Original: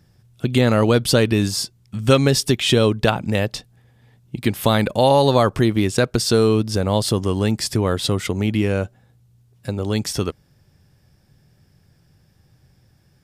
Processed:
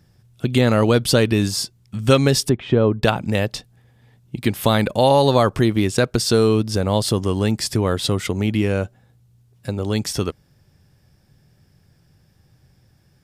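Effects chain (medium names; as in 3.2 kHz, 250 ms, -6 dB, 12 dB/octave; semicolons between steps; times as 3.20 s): 2.49–3.03 s: low-pass 1.3 kHz 12 dB/octave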